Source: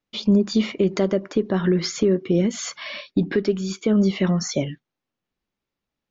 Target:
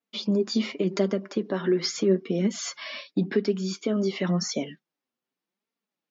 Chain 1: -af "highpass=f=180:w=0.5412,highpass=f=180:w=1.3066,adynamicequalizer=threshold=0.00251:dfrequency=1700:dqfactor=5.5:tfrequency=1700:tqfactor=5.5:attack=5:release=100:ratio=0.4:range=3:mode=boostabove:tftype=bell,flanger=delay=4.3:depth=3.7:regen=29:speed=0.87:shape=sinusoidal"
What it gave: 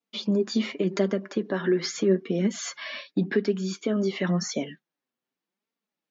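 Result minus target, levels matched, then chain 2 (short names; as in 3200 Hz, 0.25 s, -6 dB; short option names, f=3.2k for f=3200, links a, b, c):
2000 Hz band +2.5 dB
-af "highpass=f=180:w=0.5412,highpass=f=180:w=1.3066,adynamicequalizer=threshold=0.00251:dfrequency=5100:dqfactor=5.5:tfrequency=5100:tqfactor=5.5:attack=5:release=100:ratio=0.4:range=3:mode=boostabove:tftype=bell,flanger=delay=4.3:depth=3.7:regen=29:speed=0.87:shape=sinusoidal"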